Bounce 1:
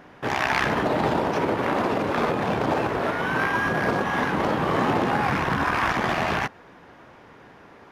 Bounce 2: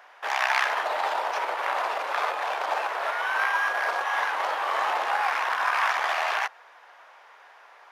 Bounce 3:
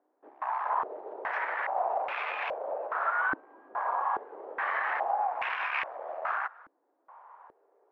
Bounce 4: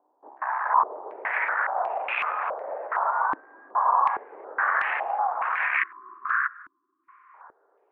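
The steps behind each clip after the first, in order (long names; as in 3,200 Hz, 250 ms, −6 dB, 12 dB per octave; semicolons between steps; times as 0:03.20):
high-pass filter 680 Hz 24 dB per octave
brickwall limiter −18.5 dBFS, peak gain reduction 11 dB; low-pass on a step sequencer 2.4 Hz 300–2,500 Hz; level −7.5 dB
time-frequency box erased 0:05.77–0:07.34, 390–1,000 Hz; low-pass on a step sequencer 2.7 Hz 950–2,600 Hz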